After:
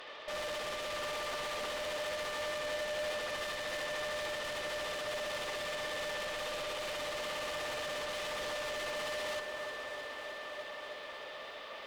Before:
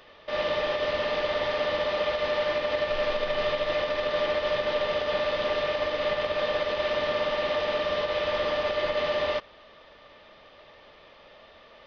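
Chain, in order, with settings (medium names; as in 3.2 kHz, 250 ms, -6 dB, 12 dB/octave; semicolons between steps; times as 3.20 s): high-pass 260 Hz 12 dB/octave; in parallel at +2.5 dB: compression, threshold -39 dBFS, peak gain reduction 15 dB; on the sum: bass shelf 500 Hz -6.5 dB; bucket-brigade echo 323 ms, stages 4096, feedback 75%, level -16 dB; valve stage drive 37 dB, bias 0.25; bit-crushed delay 308 ms, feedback 80%, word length 11-bit, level -11 dB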